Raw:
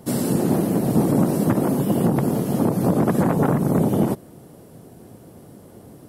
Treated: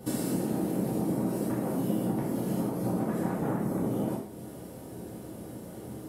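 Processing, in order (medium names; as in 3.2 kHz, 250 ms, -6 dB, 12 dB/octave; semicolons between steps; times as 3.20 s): compression 6:1, threshold -30 dBFS, peak gain reduction 16 dB; gated-style reverb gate 210 ms falling, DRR -6.5 dB; trim -5 dB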